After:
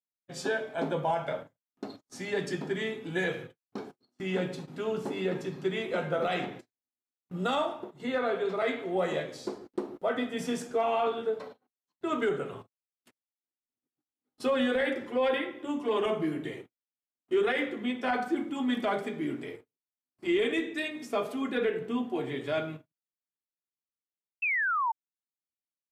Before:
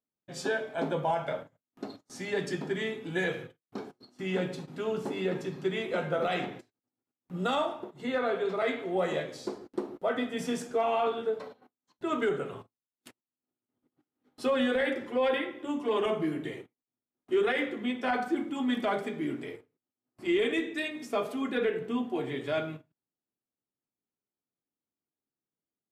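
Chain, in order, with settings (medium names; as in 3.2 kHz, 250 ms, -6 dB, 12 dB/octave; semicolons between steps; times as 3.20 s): gate -49 dBFS, range -17 dB; painted sound fall, 24.42–24.92 s, 870–2700 Hz -28 dBFS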